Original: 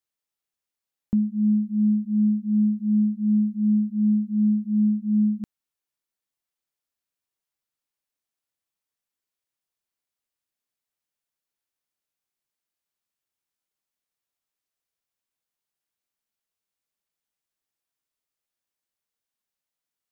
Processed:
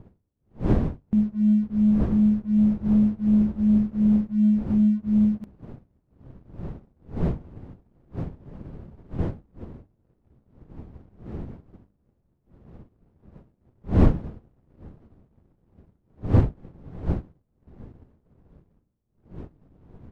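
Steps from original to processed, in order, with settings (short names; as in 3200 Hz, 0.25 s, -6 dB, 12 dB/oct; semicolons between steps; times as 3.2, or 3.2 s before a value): wind noise 200 Hz -31 dBFS; notches 50/100/150/200/250/300 Hz; sample leveller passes 1; bell 74 Hz +2.5 dB; upward expander 1.5:1, over -42 dBFS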